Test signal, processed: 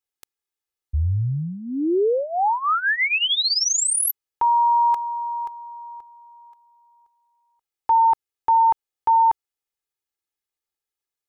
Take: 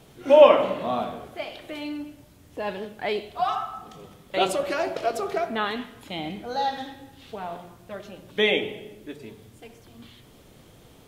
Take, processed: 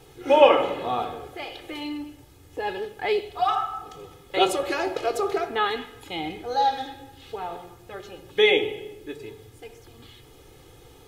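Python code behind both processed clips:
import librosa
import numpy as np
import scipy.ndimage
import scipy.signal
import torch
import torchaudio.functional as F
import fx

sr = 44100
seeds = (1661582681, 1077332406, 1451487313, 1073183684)

y = x + 0.74 * np.pad(x, (int(2.4 * sr / 1000.0), 0))[:len(x)]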